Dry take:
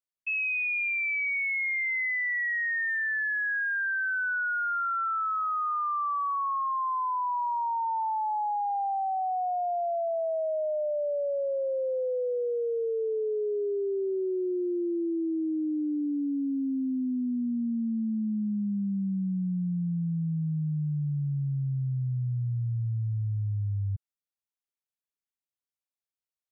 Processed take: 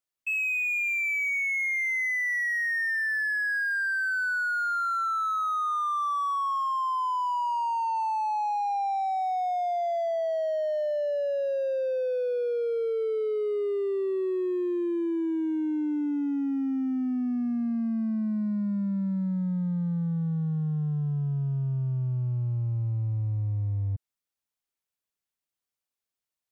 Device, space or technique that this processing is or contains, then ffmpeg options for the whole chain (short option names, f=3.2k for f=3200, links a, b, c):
parallel distortion: -filter_complex "[0:a]asplit=2[a][b];[b]asoftclip=type=hard:threshold=-39.5dB,volume=-5dB[c];[a][c]amix=inputs=2:normalize=0"